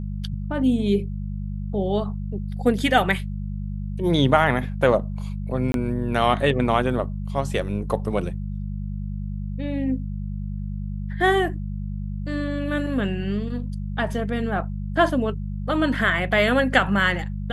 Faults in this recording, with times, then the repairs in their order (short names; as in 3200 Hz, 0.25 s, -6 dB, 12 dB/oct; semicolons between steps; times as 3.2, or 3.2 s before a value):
hum 50 Hz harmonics 4 -29 dBFS
5.72–5.74 gap 22 ms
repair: de-hum 50 Hz, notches 4; interpolate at 5.72, 22 ms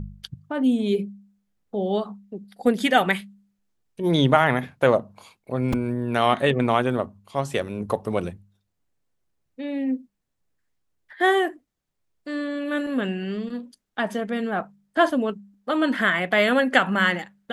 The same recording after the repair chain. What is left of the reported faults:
none